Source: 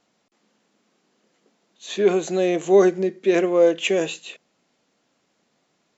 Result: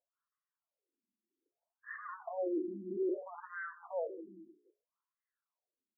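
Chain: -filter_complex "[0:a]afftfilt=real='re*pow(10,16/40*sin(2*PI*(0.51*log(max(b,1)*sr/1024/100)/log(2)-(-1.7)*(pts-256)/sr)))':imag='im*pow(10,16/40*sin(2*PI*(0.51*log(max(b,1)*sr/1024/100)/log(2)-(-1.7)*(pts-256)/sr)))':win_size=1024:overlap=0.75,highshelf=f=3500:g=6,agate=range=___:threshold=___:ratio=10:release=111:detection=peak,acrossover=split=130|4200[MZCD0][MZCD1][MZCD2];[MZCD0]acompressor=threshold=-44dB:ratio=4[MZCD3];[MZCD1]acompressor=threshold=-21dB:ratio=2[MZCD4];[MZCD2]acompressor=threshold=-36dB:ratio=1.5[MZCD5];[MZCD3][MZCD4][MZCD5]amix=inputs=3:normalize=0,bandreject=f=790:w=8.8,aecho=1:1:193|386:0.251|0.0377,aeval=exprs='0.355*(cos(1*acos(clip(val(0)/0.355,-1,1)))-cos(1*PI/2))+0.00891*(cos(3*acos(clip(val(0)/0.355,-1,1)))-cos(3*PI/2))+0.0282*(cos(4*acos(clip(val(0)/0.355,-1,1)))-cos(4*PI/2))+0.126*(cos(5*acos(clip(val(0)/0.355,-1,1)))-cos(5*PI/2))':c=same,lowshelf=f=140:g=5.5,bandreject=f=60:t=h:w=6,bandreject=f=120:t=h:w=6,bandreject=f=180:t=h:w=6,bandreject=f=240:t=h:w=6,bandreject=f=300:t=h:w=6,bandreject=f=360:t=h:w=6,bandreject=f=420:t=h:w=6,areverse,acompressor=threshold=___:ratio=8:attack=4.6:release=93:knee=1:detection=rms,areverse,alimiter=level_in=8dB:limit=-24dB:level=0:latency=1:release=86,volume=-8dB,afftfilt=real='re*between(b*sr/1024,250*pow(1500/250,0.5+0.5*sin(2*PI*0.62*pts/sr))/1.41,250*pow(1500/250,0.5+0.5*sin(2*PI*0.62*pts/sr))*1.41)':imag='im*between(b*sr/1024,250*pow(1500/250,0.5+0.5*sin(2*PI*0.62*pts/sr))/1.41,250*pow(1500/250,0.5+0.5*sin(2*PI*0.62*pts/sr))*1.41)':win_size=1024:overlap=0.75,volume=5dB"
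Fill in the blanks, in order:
-37dB, -35dB, -28dB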